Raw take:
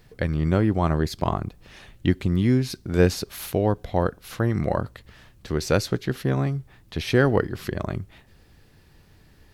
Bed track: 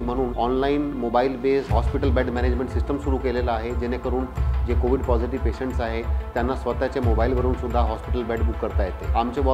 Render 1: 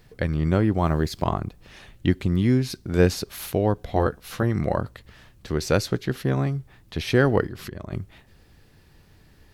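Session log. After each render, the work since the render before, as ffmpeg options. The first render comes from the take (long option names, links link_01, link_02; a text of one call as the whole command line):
ffmpeg -i in.wav -filter_complex "[0:a]asettb=1/sr,asplit=3[link_01][link_02][link_03];[link_01]atrim=end=0.784[link_04];[link_02]atrim=start=0.78:end=1.24,asetpts=PTS-STARTPTS,afade=type=in:duration=0.004:curve=qsin,afade=type=out:start_time=0.456:duration=0.004:curve=qsin,acrusher=bits=8:mix=0:aa=0.5[link_05];[link_03]atrim=start=1.236[link_06];[link_04][link_05]acrossfade=duration=0.004:curve1=hsin:curve2=qsin[link_07];[link_07][link_06]acrossfade=duration=0.004:curve1=qsin:curve2=hsin,asettb=1/sr,asplit=3[link_08][link_09][link_10];[link_08]atrim=end=3.874[link_11];[link_09]atrim=start=3.87:end=4.43,asetpts=PTS-STARTPTS,afade=type=in:duration=0.004:curve=qsin,afade=type=out:start_time=0.556:duration=0.004:curve=qsin,asplit=2[link_12][link_13];[link_13]adelay=14,volume=-4dB[link_14];[link_12][link_14]amix=inputs=2:normalize=0,atrim=end_sample=24696[link_15];[link_10]atrim=start=4.426[link_16];[link_11][link_15]acrossfade=duration=0.004:curve1=hsin:curve2=qsin[link_17];[link_17][link_16]acrossfade=duration=0.004:curve1=qsin:curve2=hsin,asplit=3[link_18][link_19][link_20];[link_18]afade=type=out:start_time=7.47:duration=0.02[link_21];[link_19]acompressor=threshold=-31dB:ratio=4:attack=3.2:release=140:knee=1:detection=peak,afade=type=in:start_time=7.47:duration=0.02,afade=type=out:start_time=7.91:duration=0.02[link_22];[link_20]afade=type=in:start_time=7.91:duration=0.02[link_23];[link_21][link_22][link_23]amix=inputs=3:normalize=0" out.wav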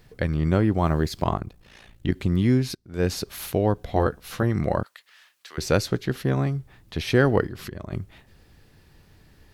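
ffmpeg -i in.wav -filter_complex "[0:a]asplit=3[link_01][link_02][link_03];[link_01]afade=type=out:start_time=1.36:duration=0.02[link_04];[link_02]tremolo=f=57:d=0.75,afade=type=in:start_time=1.36:duration=0.02,afade=type=out:start_time=2.14:duration=0.02[link_05];[link_03]afade=type=in:start_time=2.14:duration=0.02[link_06];[link_04][link_05][link_06]amix=inputs=3:normalize=0,asettb=1/sr,asplit=3[link_07][link_08][link_09];[link_07]atrim=end=4.834[link_10];[link_08]atrim=start=4.83:end=5.58,asetpts=PTS-STARTPTS,afade=type=in:duration=0.004:curve=qsin,afade=type=out:start_time=0.746:duration=0.004:curve=qsin,highpass=1400[link_11];[link_09]atrim=start=5.576[link_12];[link_10][link_11]acrossfade=duration=0.004:curve1=hsin:curve2=qsin[link_13];[link_13][link_12]acrossfade=duration=0.004:curve1=qsin:curve2=hsin,asplit=2[link_14][link_15];[link_14]atrim=end=2.75,asetpts=PTS-STARTPTS,afade=type=out:start_time=2.746:duration=0.004:curve=hsin:silence=0.0944061[link_16];[link_15]atrim=start=2.75,asetpts=PTS-STARTPTS,afade=type=in:duration=0.41:curve=qua:silence=0.0944061[link_17];[link_16][link_17]concat=n=2:v=0:a=1" out.wav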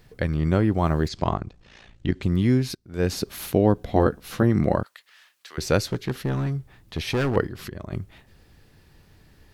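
ffmpeg -i in.wav -filter_complex "[0:a]asettb=1/sr,asplit=3[link_01][link_02][link_03];[link_01]atrim=end=1.084[link_04];[link_02]atrim=start=1.08:end=2.23,asetpts=PTS-STARTPTS,afade=type=in:duration=0.004:curve=qsin,afade=type=out:start_time=1.146:duration=0.004:curve=qsin,lowpass=frequency=7300:width=0.5412,lowpass=frequency=7300:width=1.3066[link_05];[link_03]atrim=start=2.226[link_06];[link_04][link_05]acrossfade=duration=0.004:curve1=hsin:curve2=qsin[link_07];[link_07][link_06]acrossfade=duration=0.004:curve1=qsin:curve2=hsin,asettb=1/sr,asplit=3[link_08][link_09][link_10];[link_08]atrim=end=3.124[link_11];[link_09]atrim=start=3.12:end=4.76,asetpts=PTS-STARTPTS,afade=type=in:duration=0.004:curve=qsin,afade=type=out:start_time=1.636:duration=0.004:curve=qsin,equalizer=frequency=250:width_type=o:width=1.6:gain=6[link_12];[link_10]atrim=start=4.756[link_13];[link_11][link_12]acrossfade=duration=0.004:curve1=hsin:curve2=qsin[link_14];[link_14][link_13]acrossfade=duration=0.004:curve1=qsin:curve2=hsin,asettb=1/sr,asplit=3[link_15][link_16][link_17];[link_15]atrim=end=5.794[link_18];[link_16]atrim=start=5.79:end=7.36,asetpts=PTS-STARTPTS,afade=type=in:duration=0.004:curve=qsin,afade=type=out:start_time=1.566:duration=0.004:curve=qsin,asoftclip=type=hard:threshold=-20dB[link_19];[link_17]atrim=start=7.356[link_20];[link_18][link_19]acrossfade=duration=0.004:curve1=hsin:curve2=qsin[link_21];[link_21][link_20]acrossfade=duration=0.004:curve1=qsin:curve2=hsin" out.wav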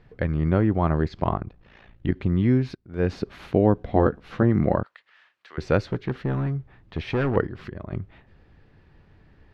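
ffmpeg -i in.wav -af "lowpass=2300" out.wav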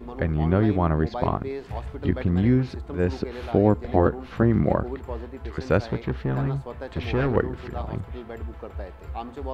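ffmpeg -i in.wav -i bed.wav -filter_complex "[1:a]volume=-12dB[link_01];[0:a][link_01]amix=inputs=2:normalize=0" out.wav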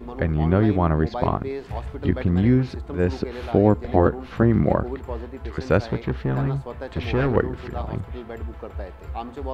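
ffmpeg -i in.wav -af "volume=2dB" out.wav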